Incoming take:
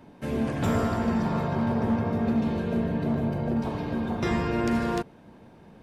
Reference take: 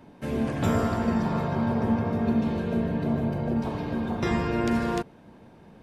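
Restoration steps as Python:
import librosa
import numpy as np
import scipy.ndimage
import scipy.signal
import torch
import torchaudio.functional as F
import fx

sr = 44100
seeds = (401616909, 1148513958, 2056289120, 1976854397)

y = fx.fix_declip(x, sr, threshold_db=-19.0)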